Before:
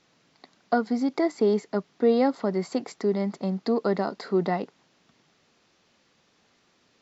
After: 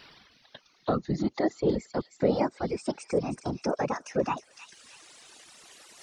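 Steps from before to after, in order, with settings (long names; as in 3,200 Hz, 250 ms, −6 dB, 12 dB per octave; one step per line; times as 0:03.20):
gliding playback speed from 76% → 157%
reversed playback
upward compression, threshold −45 dBFS
reversed playback
random phases in short frames
reverb reduction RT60 0.91 s
on a send: delay with a high-pass on its return 313 ms, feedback 30%, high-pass 3,400 Hz, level −7 dB
on the sum: one half of a high-frequency compander encoder only
level −3 dB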